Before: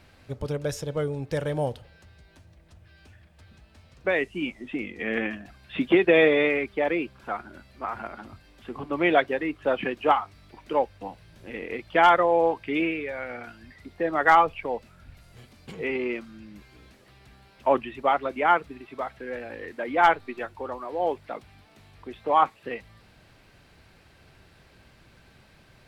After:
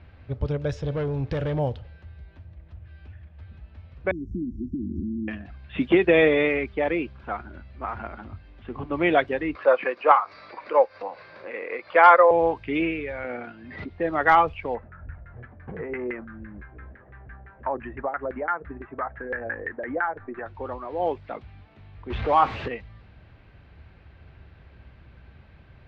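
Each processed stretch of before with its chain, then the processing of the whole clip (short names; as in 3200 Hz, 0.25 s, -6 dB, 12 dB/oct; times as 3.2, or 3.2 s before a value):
0.84–1.59 sample leveller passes 2 + compressor 2:1, threshold -30 dBFS
4.11–5.28 resonant low shelf 390 Hz +11.5 dB, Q 1.5 + compressor 10:1, threshold -28 dBFS + brick-wall FIR band-stop 390–5300 Hz
9.55–12.31 upward compressor, threshold -30 dBFS + speaker cabinet 480–5200 Hz, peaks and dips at 530 Hz +10 dB, 1100 Hz +9 dB, 1500 Hz +4 dB, 2200 Hz +4 dB, 3100 Hz -9 dB, 4700 Hz +7 dB
13.24–13.9 BPF 290–5600 Hz + low shelf 440 Hz +11.5 dB + backwards sustainer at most 47 dB/s
14.75–20.46 bell 1700 Hz +13.5 dB 0.63 oct + compressor 4:1, threshold -29 dBFS + LFO low-pass saw down 5.9 Hz 460–1800 Hz
22.1–22.68 zero-crossing step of -28.5 dBFS + LPF 3700 Hz
whole clip: LPF 4200 Hz 12 dB/oct; low-pass opened by the level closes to 3000 Hz, open at -17.5 dBFS; bell 67 Hz +12.5 dB 1.6 oct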